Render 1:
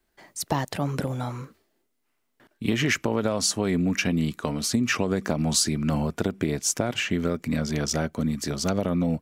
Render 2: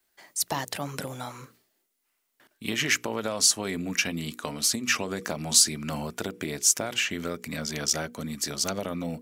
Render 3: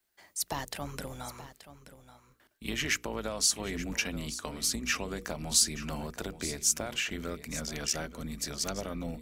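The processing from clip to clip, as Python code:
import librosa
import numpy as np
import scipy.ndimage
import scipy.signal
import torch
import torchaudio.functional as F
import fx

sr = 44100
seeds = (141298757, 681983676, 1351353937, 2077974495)

y1 = fx.tilt_eq(x, sr, slope=2.5)
y1 = fx.hum_notches(y1, sr, base_hz=60, count=8)
y1 = y1 * 10.0 ** (-2.5 / 20.0)
y2 = fx.octave_divider(y1, sr, octaves=2, level_db=-4.0)
y2 = y2 + 10.0 ** (-14.0 / 20.0) * np.pad(y2, (int(879 * sr / 1000.0), 0))[:len(y2)]
y2 = y2 * 10.0 ** (-5.5 / 20.0)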